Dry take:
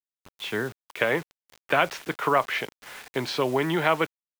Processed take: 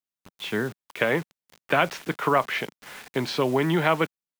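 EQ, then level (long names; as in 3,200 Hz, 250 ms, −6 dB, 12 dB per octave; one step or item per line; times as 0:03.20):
parametric band 190 Hz +6 dB 1.2 octaves
0.0 dB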